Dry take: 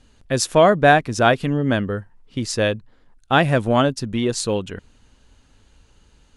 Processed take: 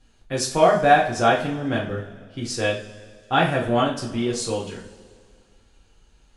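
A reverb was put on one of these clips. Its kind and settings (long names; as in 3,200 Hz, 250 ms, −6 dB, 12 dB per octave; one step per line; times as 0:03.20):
coupled-rooms reverb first 0.37 s, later 2.1 s, from −19 dB, DRR −4.5 dB
level −8.5 dB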